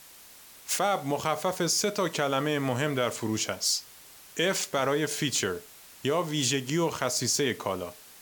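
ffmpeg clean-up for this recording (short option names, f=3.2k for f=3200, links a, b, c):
-af "afftdn=nr=24:nf=-51"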